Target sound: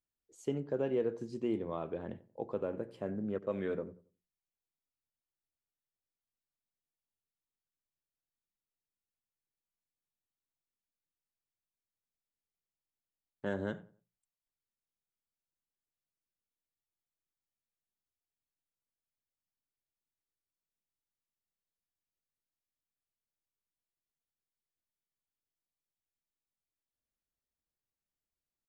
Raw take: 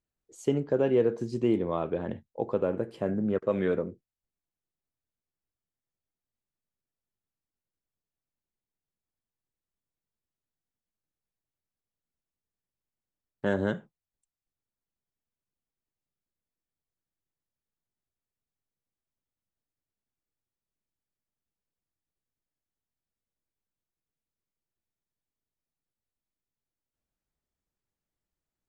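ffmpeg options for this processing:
-filter_complex "[0:a]bandreject=f=60:t=h:w=6,bandreject=f=120:t=h:w=6,bandreject=f=180:t=h:w=6,asplit=2[s0][s1];[s1]adelay=91,lowpass=f=1600:p=1,volume=0.126,asplit=2[s2][s3];[s3]adelay=91,lowpass=f=1600:p=1,volume=0.31,asplit=2[s4][s5];[s5]adelay=91,lowpass=f=1600:p=1,volume=0.31[s6];[s0][s2][s4][s6]amix=inputs=4:normalize=0,volume=0.376"

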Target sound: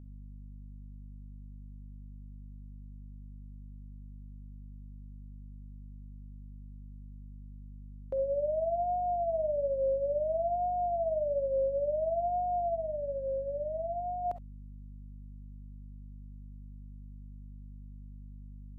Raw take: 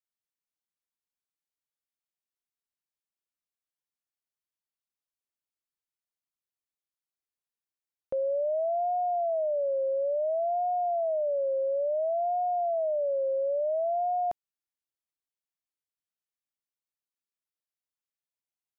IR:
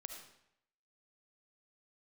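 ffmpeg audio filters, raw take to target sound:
-filter_complex "[0:a]asplit=3[s0][s1][s2];[s0]afade=t=out:st=12.74:d=0.02[s3];[s1]agate=range=0.0224:threshold=0.0631:ratio=3:detection=peak,afade=t=in:st=12.74:d=0.02,afade=t=out:st=14.24:d=0.02[s4];[s2]afade=t=in:st=14.24:d=0.02[s5];[s3][s4][s5]amix=inputs=3:normalize=0,aeval=exprs='val(0)+0.00708*(sin(2*PI*50*n/s)+sin(2*PI*2*50*n/s)/2+sin(2*PI*3*50*n/s)/3+sin(2*PI*4*50*n/s)/4+sin(2*PI*5*50*n/s)/5)':c=same[s6];[1:a]atrim=start_sample=2205,atrim=end_sample=3087[s7];[s6][s7]afir=irnorm=-1:irlink=0,volume=1.33"

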